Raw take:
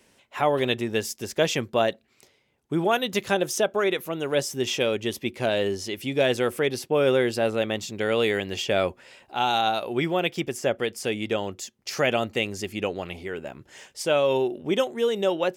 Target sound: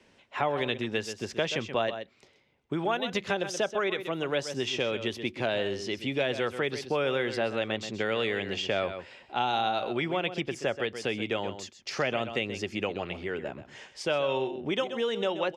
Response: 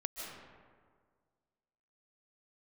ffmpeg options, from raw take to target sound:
-filter_complex "[0:a]lowpass=4500,aecho=1:1:129:0.237,acrossover=split=110|800[link_01][link_02][link_03];[link_01]acompressor=threshold=-50dB:ratio=4[link_04];[link_02]acompressor=threshold=-30dB:ratio=4[link_05];[link_03]acompressor=threshold=-29dB:ratio=4[link_06];[link_04][link_05][link_06]amix=inputs=3:normalize=0"

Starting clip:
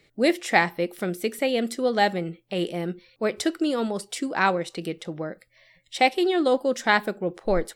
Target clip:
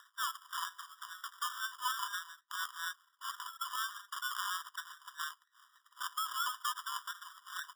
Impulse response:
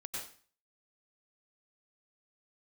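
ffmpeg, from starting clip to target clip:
-filter_complex "[0:a]bass=frequency=250:gain=11,treble=frequency=4000:gain=1,asplit=2[link_01][link_02];[link_02]acompressor=threshold=-32dB:ratio=5,volume=0dB[link_03];[link_01][link_03]amix=inputs=2:normalize=0,alimiter=limit=-15dB:level=0:latency=1:release=34,acompressor=mode=upward:threshold=-35dB:ratio=2.5,aresample=16000,acrusher=bits=5:mode=log:mix=0:aa=0.000001,aresample=44100,acrossover=split=750[link_04][link_05];[link_04]aeval=exprs='val(0)*(1-1/2+1/2*cos(2*PI*4.2*n/s))':channel_layout=same[link_06];[link_05]aeval=exprs='val(0)*(1-1/2-1/2*cos(2*PI*4.2*n/s))':channel_layout=same[link_07];[link_06][link_07]amix=inputs=2:normalize=0,acrusher=samples=22:mix=1:aa=0.000001,aeval=exprs='abs(val(0))':channel_layout=same,afftfilt=real='re*eq(mod(floor(b*sr/1024/970),2),1)':imag='im*eq(mod(floor(b*sr/1024/970),2),1)':win_size=1024:overlap=0.75,volume=1dB"

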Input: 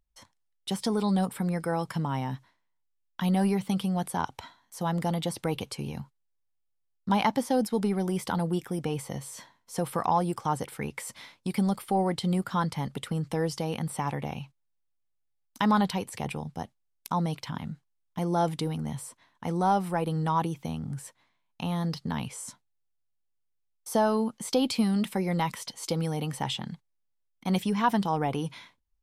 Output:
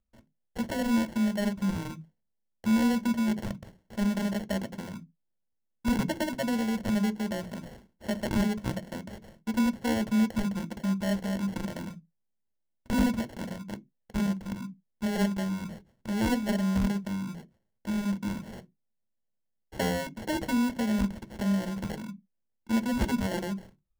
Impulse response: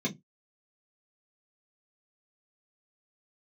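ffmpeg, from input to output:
-filter_complex "[0:a]asetrate=53361,aresample=44100,acrusher=samples=36:mix=1:aa=0.000001,asplit=2[link_01][link_02];[1:a]atrim=start_sample=2205,highshelf=frequency=7700:gain=11.5[link_03];[link_02][link_03]afir=irnorm=-1:irlink=0,volume=-16.5dB[link_04];[link_01][link_04]amix=inputs=2:normalize=0,volume=-3.5dB"

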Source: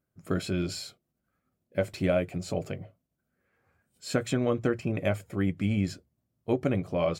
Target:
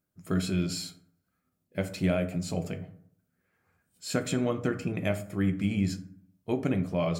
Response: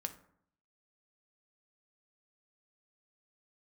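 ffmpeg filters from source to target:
-filter_complex "[0:a]highshelf=frequency=4300:gain=6,bandreject=frequency=550:width=12[link_01];[1:a]atrim=start_sample=2205[link_02];[link_01][link_02]afir=irnorm=-1:irlink=0"

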